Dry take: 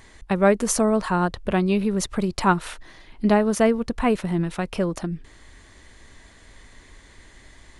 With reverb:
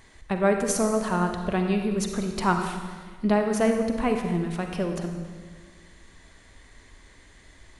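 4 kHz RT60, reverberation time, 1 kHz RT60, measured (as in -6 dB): 1.4 s, 1.6 s, 1.5 s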